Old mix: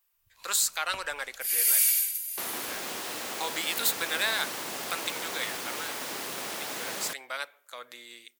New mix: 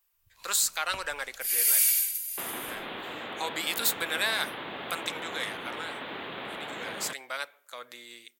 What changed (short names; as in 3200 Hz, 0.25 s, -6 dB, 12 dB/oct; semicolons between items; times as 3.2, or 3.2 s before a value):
second sound: add elliptic low-pass 3600 Hz, stop band 40 dB; master: add low shelf 250 Hz +4.5 dB